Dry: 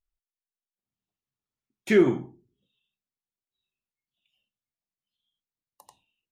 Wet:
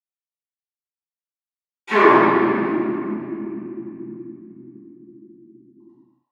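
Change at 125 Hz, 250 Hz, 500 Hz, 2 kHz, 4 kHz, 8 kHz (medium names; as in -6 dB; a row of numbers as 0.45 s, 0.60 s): +4.0 dB, +7.5 dB, +7.5 dB, +13.5 dB, +8.0 dB, no reading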